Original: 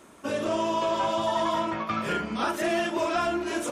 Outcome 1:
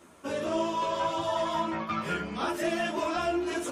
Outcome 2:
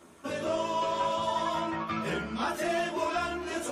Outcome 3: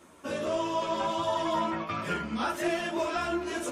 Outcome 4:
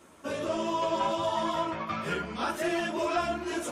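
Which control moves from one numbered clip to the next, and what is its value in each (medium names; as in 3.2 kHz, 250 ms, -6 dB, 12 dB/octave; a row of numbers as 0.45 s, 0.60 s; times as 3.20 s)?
chorus, rate: 0.85 Hz, 0.24 Hz, 1.5 Hz, 2.4 Hz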